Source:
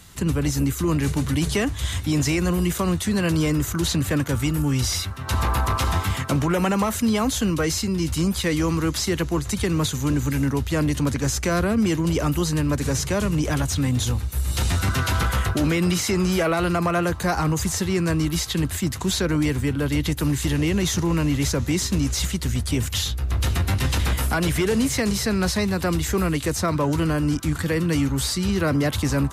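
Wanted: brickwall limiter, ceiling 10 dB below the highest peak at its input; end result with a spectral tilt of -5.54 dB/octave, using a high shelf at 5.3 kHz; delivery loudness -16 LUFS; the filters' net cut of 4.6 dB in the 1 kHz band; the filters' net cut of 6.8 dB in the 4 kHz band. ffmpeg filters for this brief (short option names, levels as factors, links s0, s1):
-af "equalizer=f=1000:t=o:g=-5.5,equalizer=f=4000:t=o:g=-5,highshelf=f=5300:g=-8,volume=5.01,alimiter=limit=0.376:level=0:latency=1"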